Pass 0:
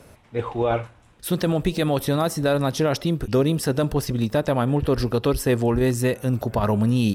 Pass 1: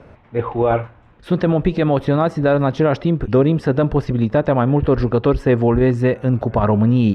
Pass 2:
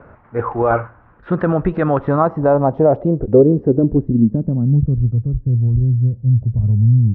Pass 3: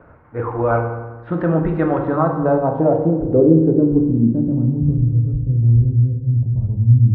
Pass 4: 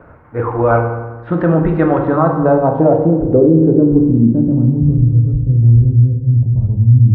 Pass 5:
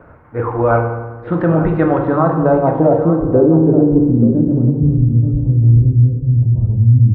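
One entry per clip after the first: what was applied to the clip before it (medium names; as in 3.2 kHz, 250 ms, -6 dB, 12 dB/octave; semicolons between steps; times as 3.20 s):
low-pass 2.1 kHz 12 dB/octave; trim +5.5 dB
low-pass sweep 1.4 kHz -> 120 Hz, 1.93–5.23 s; trim -1 dB
reverberation RT60 1.2 s, pre-delay 3 ms, DRR 2 dB; trim -4.5 dB
loudness maximiser +6 dB; trim -1 dB
delay 880 ms -12 dB; trim -1 dB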